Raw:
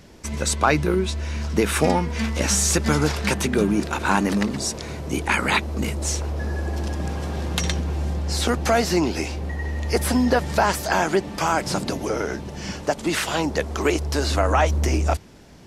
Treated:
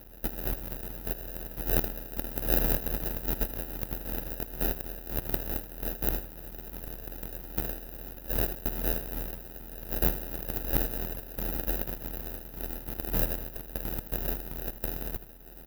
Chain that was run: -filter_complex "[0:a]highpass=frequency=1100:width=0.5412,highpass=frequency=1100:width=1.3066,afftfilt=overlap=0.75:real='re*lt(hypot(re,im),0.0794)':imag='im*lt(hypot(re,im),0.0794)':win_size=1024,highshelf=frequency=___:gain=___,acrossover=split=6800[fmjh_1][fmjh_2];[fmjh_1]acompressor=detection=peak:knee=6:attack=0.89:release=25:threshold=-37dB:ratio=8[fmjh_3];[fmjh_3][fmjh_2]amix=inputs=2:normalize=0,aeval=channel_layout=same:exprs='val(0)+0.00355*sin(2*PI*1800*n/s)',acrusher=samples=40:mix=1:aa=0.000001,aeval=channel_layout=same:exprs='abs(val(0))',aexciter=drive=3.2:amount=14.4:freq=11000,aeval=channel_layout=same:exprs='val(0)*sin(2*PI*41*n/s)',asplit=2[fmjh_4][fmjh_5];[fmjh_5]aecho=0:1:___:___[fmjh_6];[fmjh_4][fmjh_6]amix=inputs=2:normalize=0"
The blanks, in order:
2700, 11, 79, 0.188